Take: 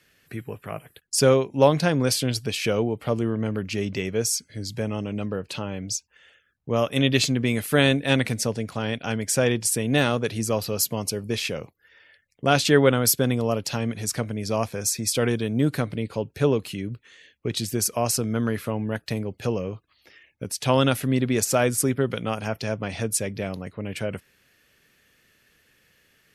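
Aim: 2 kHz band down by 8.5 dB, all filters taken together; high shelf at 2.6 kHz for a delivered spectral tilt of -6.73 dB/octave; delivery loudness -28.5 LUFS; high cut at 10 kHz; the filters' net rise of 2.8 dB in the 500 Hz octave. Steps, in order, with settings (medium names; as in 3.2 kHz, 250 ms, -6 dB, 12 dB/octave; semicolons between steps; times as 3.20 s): low-pass 10 kHz; peaking EQ 500 Hz +4 dB; peaking EQ 2 kHz -8.5 dB; treble shelf 2.6 kHz -7.5 dB; trim -4.5 dB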